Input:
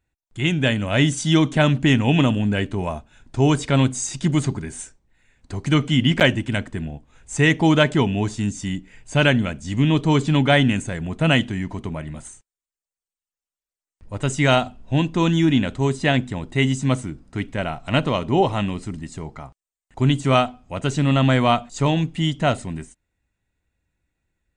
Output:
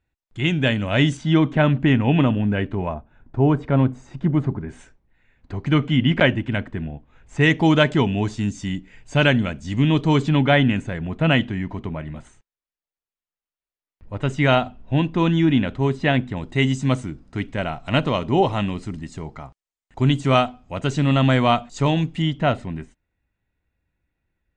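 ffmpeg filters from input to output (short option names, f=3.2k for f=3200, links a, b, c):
-af "asetnsamples=n=441:p=0,asendcmd='1.17 lowpass f 2300;2.94 lowpass f 1300;4.69 lowpass f 2800;7.41 lowpass f 5500;10.29 lowpass f 3300;16.37 lowpass f 6300;22.22 lowpass f 3200',lowpass=4.9k"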